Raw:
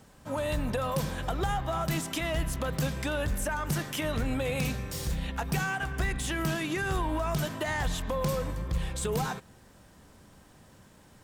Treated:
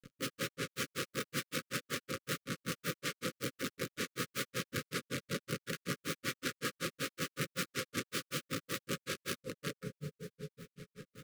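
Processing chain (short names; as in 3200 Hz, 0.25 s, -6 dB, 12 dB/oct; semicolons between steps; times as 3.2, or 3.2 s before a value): median filter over 41 samples; diffused feedback echo 0.502 s, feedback 51%, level -7 dB; wrapped overs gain 32 dB; HPF 110 Hz 24 dB/oct; bit-crush 9-bit; elliptic band-stop 540–1200 Hz, stop band 40 dB; reverb RT60 0.65 s, pre-delay 4 ms, DRR 8 dB; grains 0.115 s, grains 5.3/s, pitch spread up and down by 0 st; gain +4.5 dB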